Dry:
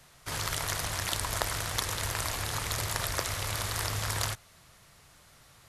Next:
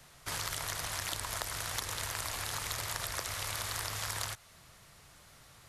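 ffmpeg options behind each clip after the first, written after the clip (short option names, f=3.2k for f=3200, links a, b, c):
-filter_complex "[0:a]acrossover=split=630|4200[a][b][c];[a]acompressor=threshold=-45dB:ratio=4[d];[b]acompressor=threshold=-38dB:ratio=4[e];[c]acompressor=threshold=-37dB:ratio=4[f];[d][e][f]amix=inputs=3:normalize=0"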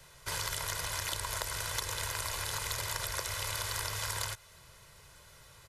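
-af "aecho=1:1:2:0.56"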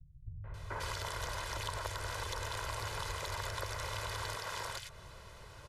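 -filter_complex "[0:a]aemphasis=mode=reproduction:type=75kf,acompressor=threshold=-44dB:ratio=3,acrossover=split=150|2000[a][b][c];[b]adelay=440[d];[c]adelay=540[e];[a][d][e]amix=inputs=3:normalize=0,volume=7.5dB"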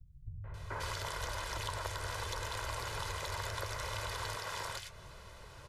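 -af "flanger=delay=3.3:depth=9.9:regen=-69:speed=0.75:shape=sinusoidal,volume=4.5dB"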